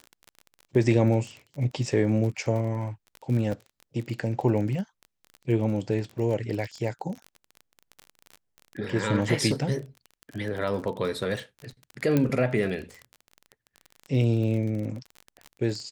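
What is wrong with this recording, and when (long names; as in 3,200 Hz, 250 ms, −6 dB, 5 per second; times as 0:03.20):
surface crackle 27 per second −32 dBFS
0:03.52: drop-out 3.9 ms
0:12.17: click −11 dBFS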